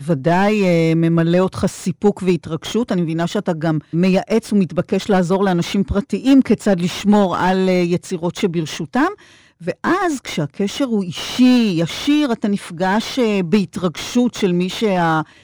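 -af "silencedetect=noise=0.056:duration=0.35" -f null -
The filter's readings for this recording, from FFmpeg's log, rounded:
silence_start: 9.13
silence_end: 9.67 | silence_duration: 0.54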